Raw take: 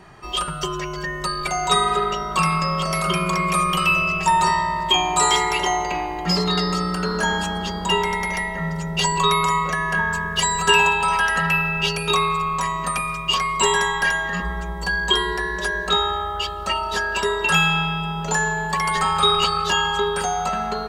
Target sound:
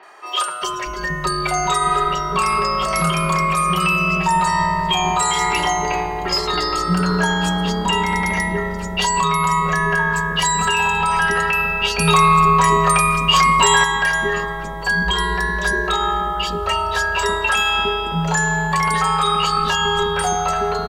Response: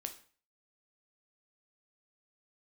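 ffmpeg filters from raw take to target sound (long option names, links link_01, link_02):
-filter_complex "[0:a]acrossover=split=410|3800[link_01][link_02][link_03];[link_03]adelay=30[link_04];[link_01]adelay=620[link_05];[link_05][link_02][link_04]amix=inputs=3:normalize=0,asplit=2[link_06][link_07];[1:a]atrim=start_sample=2205[link_08];[link_07][link_08]afir=irnorm=-1:irlink=0,volume=-10.5dB[link_09];[link_06][link_09]amix=inputs=2:normalize=0,alimiter=limit=-11.5dB:level=0:latency=1:release=118,asettb=1/sr,asplit=3[link_10][link_11][link_12];[link_10]atrim=end=11.984[link_13];[link_11]atrim=start=11.98:end=13.84,asetpts=PTS-STARTPTS,afade=type=in:duration=0.004:curve=qsin,afade=type=out:start_time=1.856:duration=0.004:curve=qsin,acontrast=28[link_14];[link_12]atrim=start=13.836[link_15];[link_13][link_14]acrossfade=duration=0.004:curve1=hsin:curve2=qsin[link_16];[link_16][link_15]acrossfade=duration=0.004:curve1=qsin:curve2=hsin,volume=3dB"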